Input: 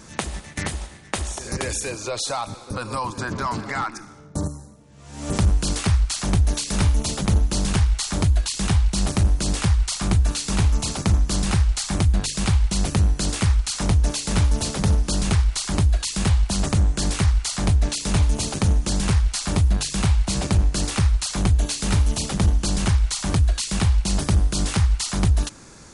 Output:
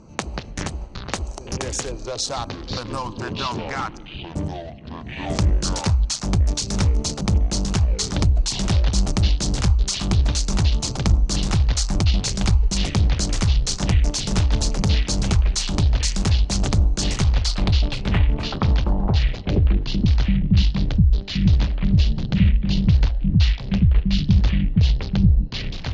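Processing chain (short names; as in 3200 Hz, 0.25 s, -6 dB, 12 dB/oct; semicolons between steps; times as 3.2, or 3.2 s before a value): Wiener smoothing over 25 samples; low-pass sweep 6200 Hz -> 180 Hz, 17.25–20.38; echoes that change speed 91 ms, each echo -7 st, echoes 2, each echo -6 dB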